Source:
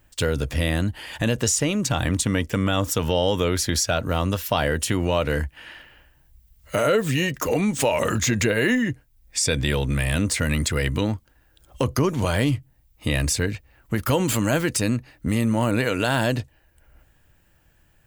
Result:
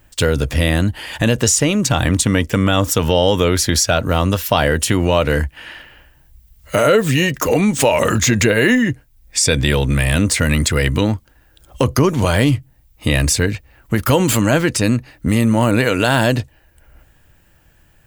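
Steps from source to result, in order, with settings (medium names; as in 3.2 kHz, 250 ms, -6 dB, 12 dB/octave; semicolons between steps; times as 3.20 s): 14.41–14.84 s: treble shelf 10 kHz -10 dB; trim +7 dB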